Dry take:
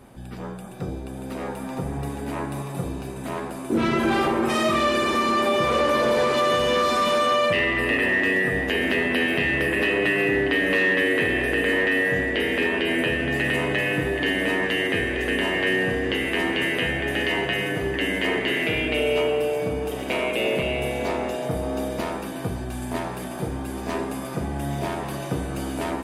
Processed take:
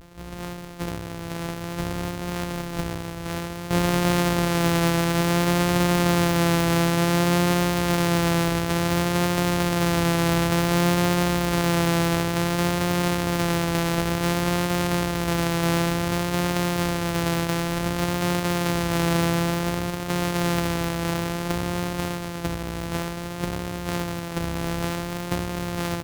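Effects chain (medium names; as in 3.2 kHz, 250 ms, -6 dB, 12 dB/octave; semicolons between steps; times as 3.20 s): sorted samples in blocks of 256 samples; vibrato 0.56 Hz 31 cents; harmony voices -4 st -15 dB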